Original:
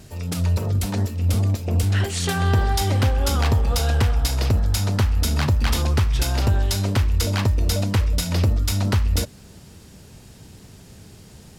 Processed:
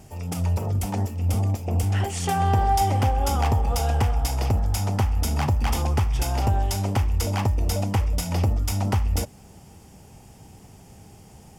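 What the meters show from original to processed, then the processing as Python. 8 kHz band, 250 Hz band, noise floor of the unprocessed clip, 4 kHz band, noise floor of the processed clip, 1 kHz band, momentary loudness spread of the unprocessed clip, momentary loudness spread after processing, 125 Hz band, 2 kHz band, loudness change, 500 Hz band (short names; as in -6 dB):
-3.5 dB, -3.0 dB, -46 dBFS, -7.0 dB, -49 dBFS, +4.5 dB, 3 LU, 4 LU, -3.0 dB, -5.5 dB, -2.5 dB, -2.0 dB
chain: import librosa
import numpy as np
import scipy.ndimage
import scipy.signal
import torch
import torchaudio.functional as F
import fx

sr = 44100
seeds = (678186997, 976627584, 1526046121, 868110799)

y = fx.graphic_eq_31(x, sr, hz=(800, 1600, 4000), db=(11, -5, -12))
y = F.gain(torch.from_numpy(y), -3.0).numpy()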